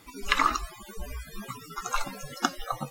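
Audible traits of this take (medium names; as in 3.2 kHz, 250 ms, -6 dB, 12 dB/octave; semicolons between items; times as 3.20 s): noise floor -48 dBFS; spectral tilt -3.5 dB/octave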